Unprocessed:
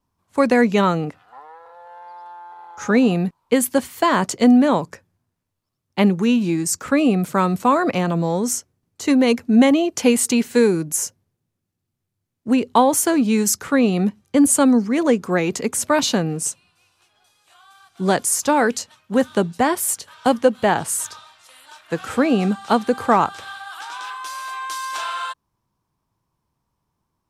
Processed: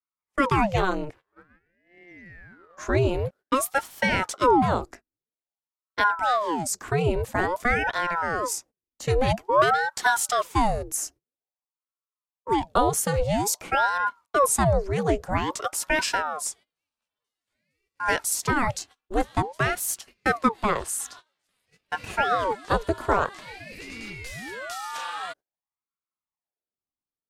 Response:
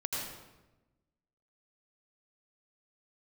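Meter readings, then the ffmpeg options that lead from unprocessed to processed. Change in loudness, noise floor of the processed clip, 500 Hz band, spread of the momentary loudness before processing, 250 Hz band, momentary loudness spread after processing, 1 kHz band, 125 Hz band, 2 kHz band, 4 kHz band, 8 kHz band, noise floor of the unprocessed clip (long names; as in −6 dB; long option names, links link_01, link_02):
−6.0 dB, below −85 dBFS, −6.5 dB, 13 LU, −14.0 dB, 13 LU, −2.0 dB, −3.0 dB, 0.0 dB, −5.0 dB, −6.5 dB, −78 dBFS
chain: -af "agate=range=-21dB:threshold=-39dB:ratio=16:detection=peak,aeval=exprs='val(0)*sin(2*PI*690*n/s+690*0.8/0.5*sin(2*PI*0.5*n/s))':channel_layout=same,volume=-3.5dB"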